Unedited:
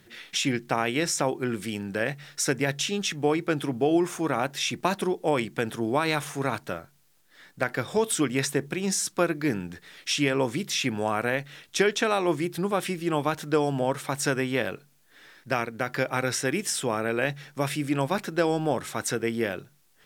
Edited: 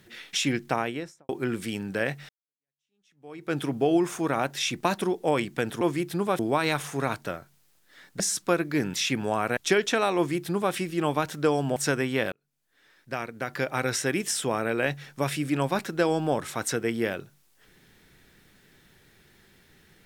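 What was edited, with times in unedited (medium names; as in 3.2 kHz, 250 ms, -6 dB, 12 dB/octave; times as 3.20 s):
0.66–1.29 s: studio fade out
2.29–3.55 s: fade in exponential
7.62–8.90 s: delete
9.64–10.68 s: delete
11.31–11.66 s: delete
12.25–12.83 s: copy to 5.81 s
13.85–14.15 s: delete
14.71–16.32 s: fade in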